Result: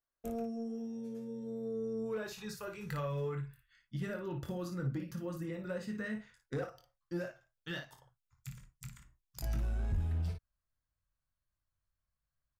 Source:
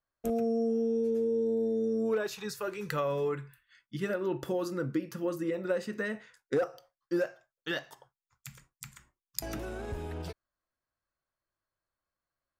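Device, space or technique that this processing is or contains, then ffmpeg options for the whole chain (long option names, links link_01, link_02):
saturation between pre-emphasis and de-emphasis: -af "asubboost=boost=8:cutoff=130,highshelf=frequency=2300:gain=9.5,aecho=1:1:23|56:0.398|0.422,asoftclip=type=tanh:threshold=-19.5dB,highshelf=frequency=2300:gain=-9.5,volume=-7dB"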